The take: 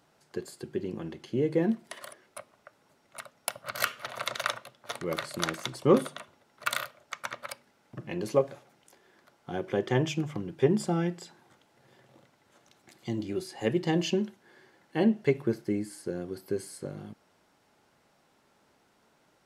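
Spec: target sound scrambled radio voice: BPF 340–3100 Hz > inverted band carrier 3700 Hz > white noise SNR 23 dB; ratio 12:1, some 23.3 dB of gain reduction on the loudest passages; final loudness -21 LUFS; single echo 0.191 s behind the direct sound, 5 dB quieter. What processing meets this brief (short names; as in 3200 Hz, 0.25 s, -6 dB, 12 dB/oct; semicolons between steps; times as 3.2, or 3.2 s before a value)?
compressor 12:1, threshold -40 dBFS; BPF 340–3100 Hz; echo 0.191 s -5 dB; inverted band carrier 3700 Hz; white noise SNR 23 dB; gain +24.5 dB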